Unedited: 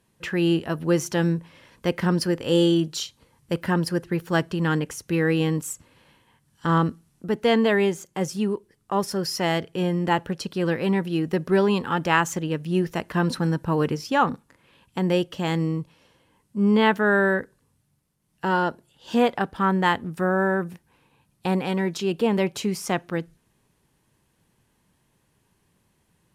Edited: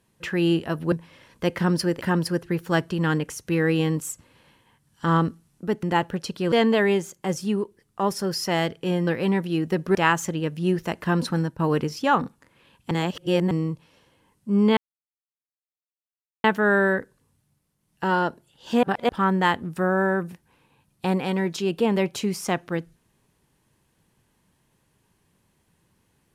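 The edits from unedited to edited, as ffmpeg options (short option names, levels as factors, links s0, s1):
-filter_complex "[0:a]asplit=13[s0][s1][s2][s3][s4][s5][s6][s7][s8][s9][s10][s11][s12];[s0]atrim=end=0.922[s13];[s1]atrim=start=1.338:end=2.432[s14];[s2]atrim=start=3.618:end=7.442[s15];[s3]atrim=start=9.988:end=10.682[s16];[s4]atrim=start=7.438:end=9.992[s17];[s5]atrim=start=10.678:end=11.562[s18];[s6]atrim=start=12.028:end=13.67,asetpts=PTS-STARTPTS,afade=t=out:st=1.352:d=0.29:c=qsin:silence=0.298538[s19];[s7]atrim=start=13.67:end=14.992,asetpts=PTS-STARTPTS,afade=t=in:d=0.004:c=hsin:silence=0.298538[s20];[s8]atrim=start=14.988:end=15.592,asetpts=PTS-STARTPTS,areverse[s21];[s9]atrim=start=15.588:end=16.85,asetpts=PTS-STARTPTS,afade=t=out:st=1.258:d=0.004:c=hsin,apad=pad_dur=1.67[s22];[s10]atrim=start=16.85:end=19.242,asetpts=PTS-STARTPTS,afade=t=in:d=0.004:c=hsin[s23];[s11]atrim=start=19.238:end=19.502,asetpts=PTS-STARTPTS,areverse[s24];[s12]atrim=start=19.498[s25];[s13][s14]acrossfade=d=0.004:c1=hsin:c2=hsin[s26];[s26][s15]acrossfade=d=0.004:c1=hsin:c2=hsin[s27];[s27][s16]acrossfade=d=0.004:c1=hsin:c2=hsin[s28];[s28][s17]acrossfade=d=0.004:c1=hsin:c2=hsin[s29];[s29][s18]acrossfade=d=0.004:c1=hsin:c2=hsin[s30];[s19][s20]concat=n=2:v=0:a=1[s31];[s30][s31]acrossfade=d=0.004:c1=hsin:c2=hsin[s32];[s32][s21]acrossfade=d=0.004:c1=hsin:c2=hsin[s33];[s22][s23]concat=n=2:v=0:a=1[s34];[s33][s34]acrossfade=d=0.004:c1=hsin:c2=hsin[s35];[s35][s24]acrossfade=d=0.004:c1=hsin:c2=hsin[s36];[s36][s25]acrossfade=d=0.004:c1=hsin:c2=hsin"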